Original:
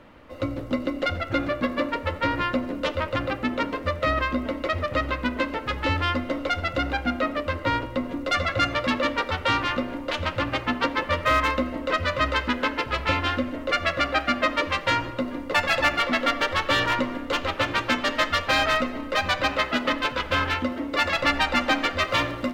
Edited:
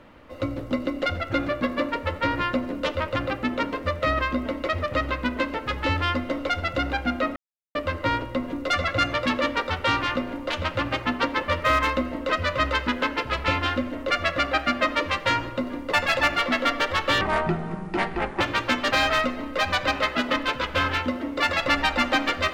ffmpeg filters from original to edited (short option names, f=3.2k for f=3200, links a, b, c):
-filter_complex "[0:a]asplit=5[a][b][c][d][e];[a]atrim=end=7.36,asetpts=PTS-STARTPTS,afade=t=out:st=7.356:d=0.004:c=hsin,apad=pad_dur=0.39[f];[b]atrim=start=7.36:end=16.824,asetpts=PTS-STARTPTS,afade=t=in:d=0.004:c=hsin[g];[c]atrim=start=16.82:end=17.61,asetpts=PTS-STARTPTS,asetrate=29106,aresample=44100,atrim=end_sample=52786,asetpts=PTS-STARTPTS[h];[d]atrim=start=17.606:end=18.112[i];[e]atrim=start=18.468[j];[f][g]concat=n=2:v=0:a=1[k];[k][h]acrossfade=d=0.004:c1=hsin:c2=hsin[l];[l][i]acrossfade=d=0.004:c1=hsin:c2=hsin[m];[m][j]acrossfade=d=0.004:c1=hsin:c2=hsin"